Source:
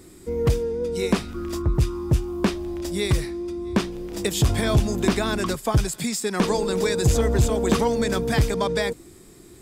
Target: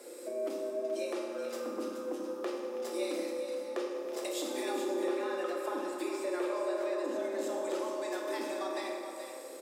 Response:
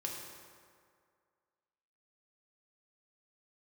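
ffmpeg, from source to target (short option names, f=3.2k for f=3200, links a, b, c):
-filter_complex "[0:a]asettb=1/sr,asplit=3[a][b][c];[a]atrim=end=4.844[d];[b]atrim=start=4.84:end=7.24,asetpts=PTS-STARTPTS,afade=t=in:d=0.004:c=qsin,afade=t=out:st=2.396:d=0.004:c=qsin,acrossover=split=2900[e][f];[f]acompressor=threshold=-42dB:ratio=4:attack=1:release=60[g];[e][g]amix=inputs=2:normalize=0[h];[c]atrim=start=7.236[i];[d][h]acrossfade=d=0.004:c1=hsin:c2=qsin[j];[j][i]acrossfade=d=0.004:c1=qsin:c2=hsin,highpass=140,acompressor=threshold=-36dB:ratio=6,afreqshift=160,aecho=1:1:426:0.376[k];[1:a]atrim=start_sample=2205[l];[k][l]afir=irnorm=-1:irlink=0"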